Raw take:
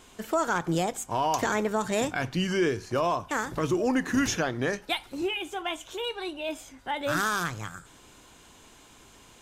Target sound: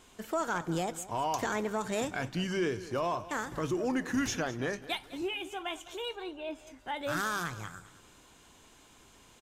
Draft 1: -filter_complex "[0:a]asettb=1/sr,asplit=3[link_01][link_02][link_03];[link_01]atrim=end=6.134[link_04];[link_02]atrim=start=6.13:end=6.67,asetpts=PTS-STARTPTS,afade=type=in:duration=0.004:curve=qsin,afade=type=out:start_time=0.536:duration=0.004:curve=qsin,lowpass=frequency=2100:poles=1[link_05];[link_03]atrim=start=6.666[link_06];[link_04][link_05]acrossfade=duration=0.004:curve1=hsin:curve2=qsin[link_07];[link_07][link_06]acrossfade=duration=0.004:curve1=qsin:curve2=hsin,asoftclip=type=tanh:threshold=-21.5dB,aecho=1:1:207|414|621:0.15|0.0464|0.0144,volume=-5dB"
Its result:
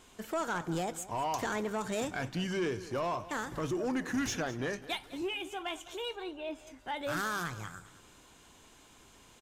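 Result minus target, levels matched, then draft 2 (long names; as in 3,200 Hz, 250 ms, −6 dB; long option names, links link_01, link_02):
soft clipping: distortion +11 dB
-filter_complex "[0:a]asettb=1/sr,asplit=3[link_01][link_02][link_03];[link_01]atrim=end=6.134[link_04];[link_02]atrim=start=6.13:end=6.67,asetpts=PTS-STARTPTS,afade=type=in:duration=0.004:curve=qsin,afade=type=out:start_time=0.536:duration=0.004:curve=qsin,lowpass=frequency=2100:poles=1[link_05];[link_03]atrim=start=6.666[link_06];[link_04][link_05]acrossfade=duration=0.004:curve1=hsin:curve2=qsin[link_07];[link_07][link_06]acrossfade=duration=0.004:curve1=qsin:curve2=hsin,asoftclip=type=tanh:threshold=-14.5dB,aecho=1:1:207|414|621:0.15|0.0464|0.0144,volume=-5dB"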